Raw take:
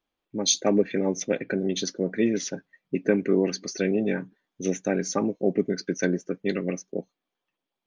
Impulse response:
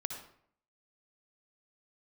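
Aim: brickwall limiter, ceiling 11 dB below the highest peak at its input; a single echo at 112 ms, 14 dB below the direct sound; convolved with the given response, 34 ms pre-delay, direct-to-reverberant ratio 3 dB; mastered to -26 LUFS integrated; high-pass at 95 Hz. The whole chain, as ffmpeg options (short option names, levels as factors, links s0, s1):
-filter_complex "[0:a]highpass=95,alimiter=limit=0.126:level=0:latency=1,aecho=1:1:112:0.2,asplit=2[s0][s1];[1:a]atrim=start_sample=2205,adelay=34[s2];[s1][s2]afir=irnorm=-1:irlink=0,volume=0.668[s3];[s0][s3]amix=inputs=2:normalize=0,volume=1.26"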